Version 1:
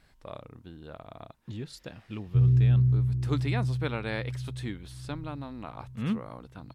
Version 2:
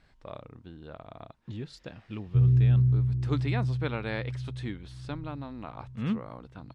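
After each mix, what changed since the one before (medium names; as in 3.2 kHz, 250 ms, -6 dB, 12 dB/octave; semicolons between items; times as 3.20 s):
speech: add distance through air 74 m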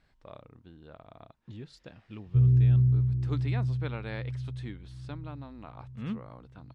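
speech -5.5 dB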